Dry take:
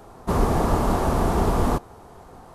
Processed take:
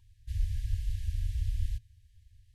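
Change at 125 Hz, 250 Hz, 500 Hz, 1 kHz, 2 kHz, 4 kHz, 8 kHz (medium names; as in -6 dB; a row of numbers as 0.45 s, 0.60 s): -9.0 dB, under -40 dB, under -40 dB, under -40 dB, -23.5 dB, -15.0 dB, -18.0 dB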